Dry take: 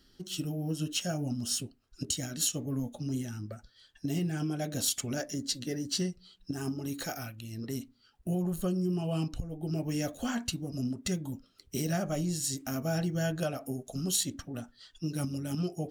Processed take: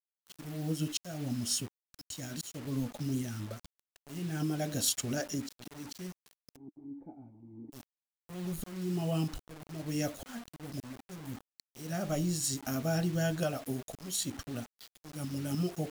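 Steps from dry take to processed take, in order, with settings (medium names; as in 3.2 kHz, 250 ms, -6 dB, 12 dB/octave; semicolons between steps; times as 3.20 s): slow attack 385 ms; bit crusher 8-bit; 6.56–7.72 s: cascade formant filter u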